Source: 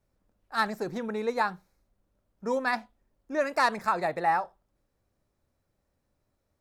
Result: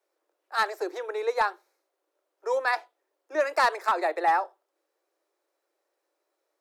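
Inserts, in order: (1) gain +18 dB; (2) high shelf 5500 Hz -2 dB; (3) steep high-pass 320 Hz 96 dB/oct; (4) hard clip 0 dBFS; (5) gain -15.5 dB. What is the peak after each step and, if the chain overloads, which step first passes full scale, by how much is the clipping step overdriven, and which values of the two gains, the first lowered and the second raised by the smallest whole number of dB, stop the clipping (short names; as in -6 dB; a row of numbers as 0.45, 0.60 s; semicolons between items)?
+6.0, +5.5, +5.0, 0.0, -15.5 dBFS; step 1, 5.0 dB; step 1 +13 dB, step 5 -10.5 dB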